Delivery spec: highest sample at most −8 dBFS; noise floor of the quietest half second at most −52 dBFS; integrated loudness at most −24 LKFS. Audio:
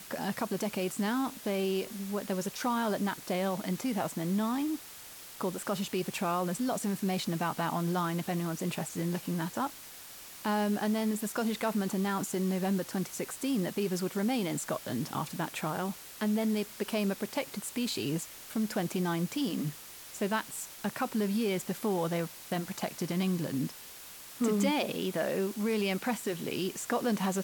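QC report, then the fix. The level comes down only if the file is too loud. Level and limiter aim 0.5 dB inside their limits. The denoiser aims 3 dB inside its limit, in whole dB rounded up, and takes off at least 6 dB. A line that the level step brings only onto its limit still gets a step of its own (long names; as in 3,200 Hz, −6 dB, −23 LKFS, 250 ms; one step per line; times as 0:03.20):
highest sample −17.0 dBFS: in spec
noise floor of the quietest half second −48 dBFS: out of spec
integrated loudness −32.5 LKFS: in spec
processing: broadband denoise 7 dB, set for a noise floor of −48 dBFS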